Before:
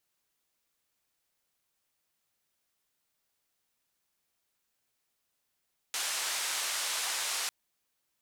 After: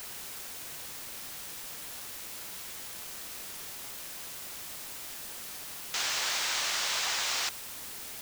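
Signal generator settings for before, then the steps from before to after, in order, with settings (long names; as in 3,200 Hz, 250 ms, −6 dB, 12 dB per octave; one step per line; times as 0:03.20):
band-limited noise 760–8,900 Hz, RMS −33.5 dBFS 1.55 s
low-pass filter 7,100 Hz 24 dB per octave
in parallel at −6 dB: bit-depth reduction 6 bits, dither triangular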